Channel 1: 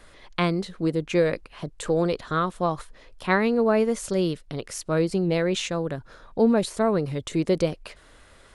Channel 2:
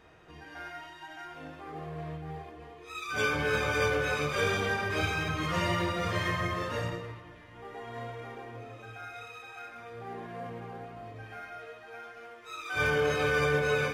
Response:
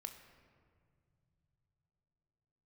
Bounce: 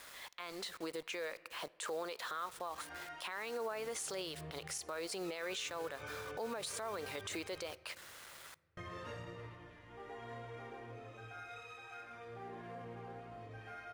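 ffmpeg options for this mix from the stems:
-filter_complex "[0:a]highpass=840,acompressor=threshold=-33dB:ratio=12,acrusher=bits=8:mix=0:aa=0.000001,volume=0dB,asplit=3[a][b][c];[b]volume=-10dB[d];[1:a]lowpass=11k,acompressor=threshold=-37dB:ratio=12,adelay=2350,volume=-7.5dB,asplit=3[e][f][g];[e]atrim=end=7.72,asetpts=PTS-STARTPTS,afade=t=out:st=7.716:d=0.004:c=hsin[h];[f]atrim=start=7.72:end=8.77,asetpts=PTS-STARTPTS,volume=0[i];[g]atrim=start=8.77,asetpts=PTS-STARTPTS,afade=t=in:d=0.004:c=hsin[j];[h][i][j]concat=n=3:v=0:a=1,asplit=2[k][l];[l]volume=-8dB[m];[c]apad=whole_len=718285[n];[k][n]sidechaincompress=threshold=-47dB:ratio=8:attack=8.6:release=105[o];[2:a]atrim=start_sample=2205[p];[d][m]amix=inputs=2:normalize=0[q];[q][p]afir=irnorm=-1:irlink=0[r];[a][o][r]amix=inputs=3:normalize=0,alimiter=level_in=7.5dB:limit=-24dB:level=0:latency=1:release=49,volume=-7.5dB"

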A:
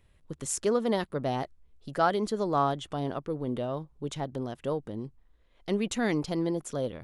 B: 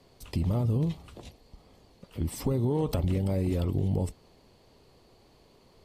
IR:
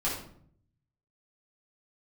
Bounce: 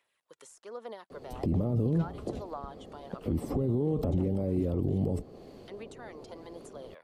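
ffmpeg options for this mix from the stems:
-filter_complex "[0:a]highpass=740,acompressor=threshold=-38dB:ratio=2,aphaser=in_gain=1:out_gain=1:delay=2.2:decay=0.43:speed=1.2:type=sinusoidal,volume=-4.5dB[a];[1:a]equalizer=f=360:t=o:w=3:g=11.5,bandreject=f=930:w=6.9,adelay=1100,volume=2dB[b];[a][b]amix=inputs=2:normalize=0,acrossover=split=210|1200[c][d][e];[c]acompressor=threshold=-24dB:ratio=4[f];[d]acompressor=threshold=-24dB:ratio=4[g];[e]acompressor=threshold=-56dB:ratio=4[h];[f][g][h]amix=inputs=3:normalize=0,alimiter=limit=-21dB:level=0:latency=1:release=26"

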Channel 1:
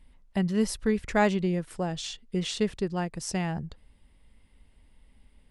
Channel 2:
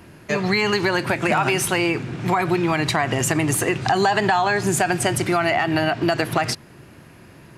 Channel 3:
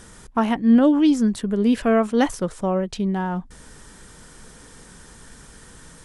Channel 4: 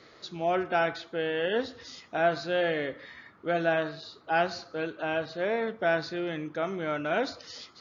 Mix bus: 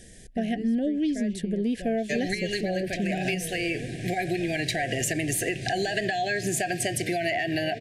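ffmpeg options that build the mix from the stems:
-filter_complex "[0:a]bass=f=250:g=1,treble=f=4k:g=-9,volume=-9.5dB,asplit=2[a][b];[1:a]lowshelf=f=390:g=-5,adelay=1800,volume=-1.5dB[c];[2:a]volume=-3.5dB[d];[3:a]alimiter=limit=-21dB:level=0:latency=1,adelay=2250,volume=-10.5dB[e];[b]apad=whole_len=413593[f];[c][f]sidechaincompress=threshold=-40dB:ratio=8:attack=6.8:release=390[g];[a][g][d][e]amix=inputs=4:normalize=0,asuperstop=centerf=1100:order=20:qfactor=1.3,acompressor=threshold=-24dB:ratio=4"

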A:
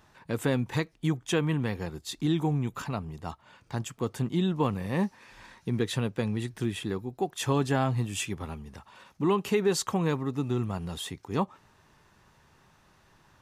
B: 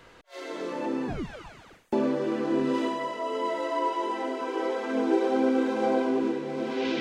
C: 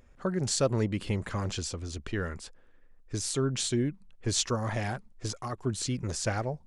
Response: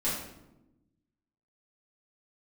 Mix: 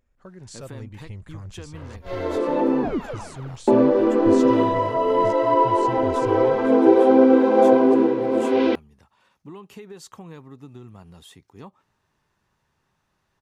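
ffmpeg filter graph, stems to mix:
-filter_complex "[0:a]acompressor=threshold=-26dB:ratio=6,adelay=250,volume=-10.5dB[a];[1:a]equalizer=f=125:t=o:w=1:g=-12,equalizer=f=250:t=o:w=1:g=8,equalizer=f=500:t=o:w=1:g=8,equalizer=f=1k:t=o:w=1:g=6,equalizer=f=8k:t=o:w=1:g=-11,adelay=1750,volume=2dB[b];[2:a]asubboost=boost=9.5:cutoff=130,volume=-13dB[c];[a][b][c]amix=inputs=3:normalize=0"

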